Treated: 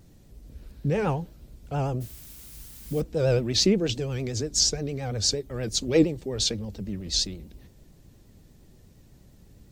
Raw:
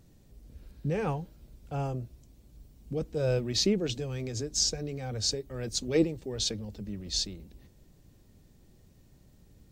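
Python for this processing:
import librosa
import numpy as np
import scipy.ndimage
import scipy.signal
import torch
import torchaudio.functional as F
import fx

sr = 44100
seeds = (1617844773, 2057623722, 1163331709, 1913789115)

y = fx.dmg_noise_colour(x, sr, seeds[0], colour='blue', level_db=-51.0, at=(2.0, 3.0), fade=0.02)
y = fx.vibrato(y, sr, rate_hz=8.6, depth_cents=88.0)
y = y * 10.0 ** (5.0 / 20.0)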